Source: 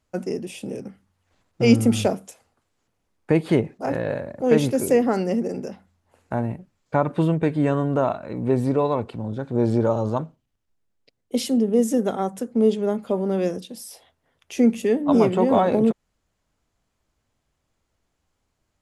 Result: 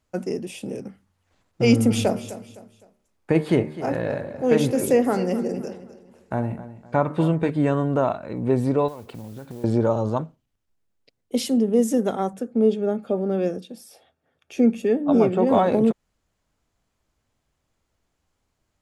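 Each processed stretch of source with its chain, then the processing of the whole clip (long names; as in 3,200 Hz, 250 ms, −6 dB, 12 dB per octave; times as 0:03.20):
0:01.65–0:07.50: hum removal 76.07 Hz, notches 29 + repeating echo 256 ms, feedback 36%, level −15 dB
0:08.88–0:09.64: downward compressor 16 to 1, threshold −32 dBFS + noise that follows the level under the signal 19 dB
0:12.33–0:15.47: high-shelf EQ 3,700 Hz −8.5 dB + notch comb filter 1,000 Hz
whole clip: no processing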